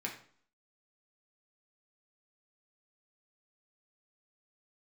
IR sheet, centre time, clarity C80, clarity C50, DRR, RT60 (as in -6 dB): 21 ms, 12.0 dB, 8.0 dB, -1.5 dB, 0.50 s